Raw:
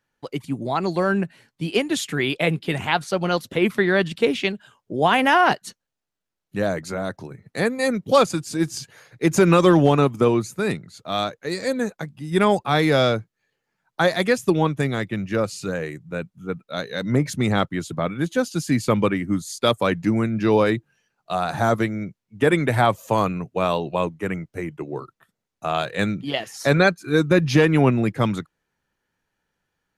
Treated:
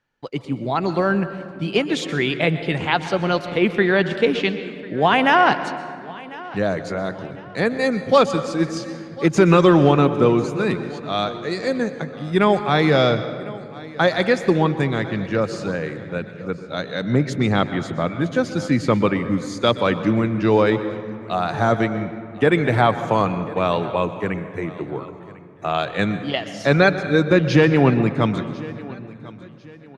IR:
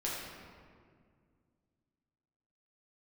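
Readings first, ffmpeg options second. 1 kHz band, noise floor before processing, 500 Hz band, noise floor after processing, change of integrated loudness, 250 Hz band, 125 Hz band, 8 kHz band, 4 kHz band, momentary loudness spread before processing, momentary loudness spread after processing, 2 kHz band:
+2.0 dB, -83 dBFS, +2.0 dB, -39 dBFS, +1.5 dB, +2.0 dB, +2.0 dB, -5.5 dB, +1.0 dB, 14 LU, 14 LU, +2.0 dB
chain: -filter_complex "[0:a]lowpass=5.1k,aecho=1:1:1048|2096|3144:0.1|0.035|0.0123,asplit=2[a][b];[1:a]atrim=start_sample=2205,asetrate=41013,aresample=44100,adelay=122[c];[b][c]afir=irnorm=-1:irlink=0,volume=-15.5dB[d];[a][d]amix=inputs=2:normalize=0,volume=1.5dB"

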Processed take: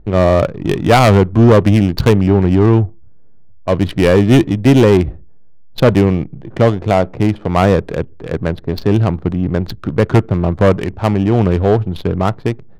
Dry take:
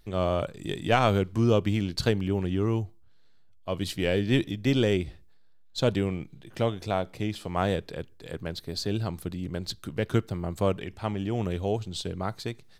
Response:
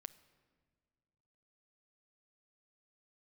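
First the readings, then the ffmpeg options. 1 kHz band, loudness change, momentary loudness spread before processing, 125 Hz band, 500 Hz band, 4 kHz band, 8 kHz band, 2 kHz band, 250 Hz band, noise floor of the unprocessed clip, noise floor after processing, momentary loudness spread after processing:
+14.0 dB, +15.0 dB, 12 LU, +16.0 dB, +15.0 dB, +7.5 dB, +9.0 dB, +12.0 dB, +15.5 dB, -52 dBFS, -35 dBFS, 11 LU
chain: -af "lowpass=f=2k:p=1,aeval=exprs='0.335*sin(PI/2*2.24*val(0)/0.335)':c=same,adynamicsmooth=sensitivity=3:basefreq=630,volume=6.5dB"

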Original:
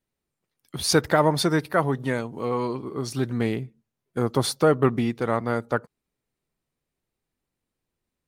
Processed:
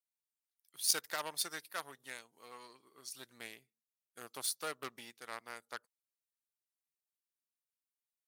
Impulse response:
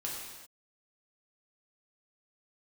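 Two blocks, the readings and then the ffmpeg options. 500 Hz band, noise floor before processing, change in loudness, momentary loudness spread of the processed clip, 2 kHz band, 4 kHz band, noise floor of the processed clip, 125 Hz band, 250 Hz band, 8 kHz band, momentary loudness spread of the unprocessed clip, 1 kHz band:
-26.5 dB, -85 dBFS, -15.0 dB, 21 LU, -14.0 dB, -9.5 dB, under -85 dBFS, -38.5 dB, -32.5 dB, -5.0 dB, 10 LU, -19.0 dB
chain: -af "aeval=exprs='0.501*(cos(1*acos(clip(val(0)/0.501,-1,1)))-cos(1*PI/2))+0.0398*(cos(7*acos(clip(val(0)/0.501,-1,1)))-cos(7*PI/2))':c=same,aderivative,volume=-2dB"

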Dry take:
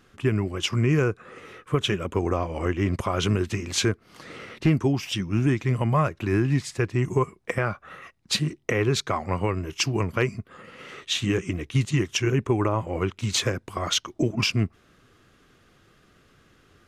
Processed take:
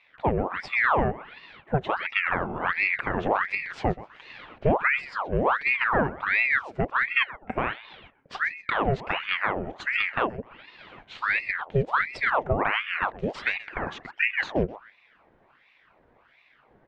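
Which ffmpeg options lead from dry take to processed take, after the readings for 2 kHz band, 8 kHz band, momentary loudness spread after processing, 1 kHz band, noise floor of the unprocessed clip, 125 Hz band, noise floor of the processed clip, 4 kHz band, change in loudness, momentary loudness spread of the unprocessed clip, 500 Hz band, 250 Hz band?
+8.0 dB, under -25 dB, 10 LU, +5.0 dB, -60 dBFS, -10.0 dB, -62 dBFS, -9.0 dB, -0.5 dB, 10 LU, -2.0 dB, -7.5 dB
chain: -filter_complex "[0:a]lowpass=1.3k,asplit=2[a][b];[b]aecho=0:1:128|256:0.133|0.0347[c];[a][c]amix=inputs=2:normalize=0,aeval=exprs='val(0)*sin(2*PI*1300*n/s+1300*0.8/1.4*sin(2*PI*1.4*n/s))':c=same,volume=1.5dB"

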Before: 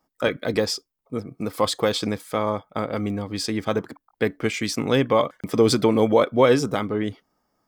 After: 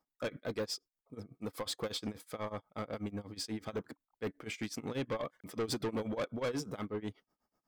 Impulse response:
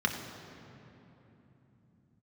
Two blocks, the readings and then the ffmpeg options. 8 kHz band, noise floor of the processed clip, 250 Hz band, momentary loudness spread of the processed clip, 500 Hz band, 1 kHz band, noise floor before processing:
-13.0 dB, under -85 dBFS, -16.0 dB, 8 LU, -18.0 dB, -18.0 dB, -79 dBFS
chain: -af "tremolo=f=8.2:d=0.94,asoftclip=type=tanh:threshold=-22.5dB,volume=-8dB"

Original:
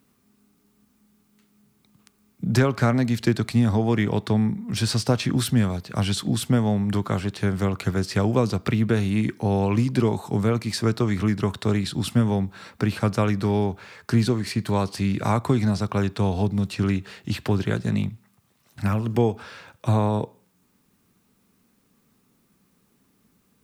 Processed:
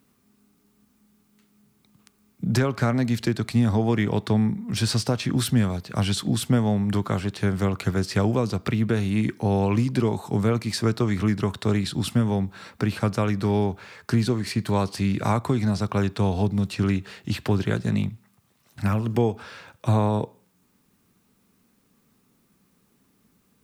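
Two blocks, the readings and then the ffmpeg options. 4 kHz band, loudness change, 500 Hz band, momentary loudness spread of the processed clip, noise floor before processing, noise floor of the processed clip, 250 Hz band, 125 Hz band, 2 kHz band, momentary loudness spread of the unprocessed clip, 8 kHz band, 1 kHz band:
-0.5 dB, -0.5 dB, -1.0 dB, 5 LU, -66 dBFS, -66 dBFS, -0.5 dB, -0.5 dB, -1.0 dB, 6 LU, 0.0 dB, -0.5 dB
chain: -af "alimiter=limit=-11dB:level=0:latency=1:release=342"

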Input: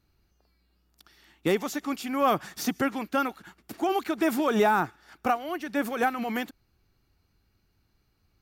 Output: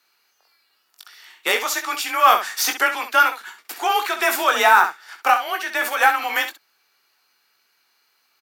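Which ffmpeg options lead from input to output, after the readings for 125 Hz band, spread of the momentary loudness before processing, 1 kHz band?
under -20 dB, 9 LU, +10.5 dB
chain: -af "highpass=1k,afreqshift=31,acontrast=72,aeval=exprs='0.316*(cos(1*acos(clip(val(0)/0.316,-1,1)))-cos(1*PI/2))+0.00355*(cos(7*acos(clip(val(0)/0.316,-1,1)))-cos(7*PI/2))':c=same,aecho=1:1:21|66:0.447|0.335,volume=6.5dB"

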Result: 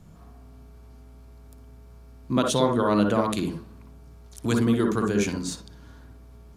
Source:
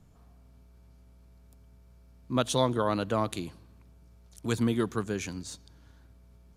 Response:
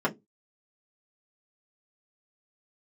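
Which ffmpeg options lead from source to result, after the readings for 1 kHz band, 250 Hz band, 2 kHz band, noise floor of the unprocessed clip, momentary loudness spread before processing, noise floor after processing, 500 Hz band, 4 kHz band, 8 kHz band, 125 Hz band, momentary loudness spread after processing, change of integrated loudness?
+4.5 dB, +7.5 dB, +5.5 dB, -57 dBFS, 14 LU, -48 dBFS, +5.5 dB, +3.5 dB, +5.0 dB, +4.5 dB, 12 LU, +6.0 dB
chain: -filter_complex "[0:a]acompressor=threshold=-31dB:ratio=2,asplit=2[a][b];[1:a]atrim=start_sample=2205,adelay=55[c];[b][c]afir=irnorm=-1:irlink=0,volume=-14dB[d];[a][d]amix=inputs=2:normalize=0,volume=7.5dB"

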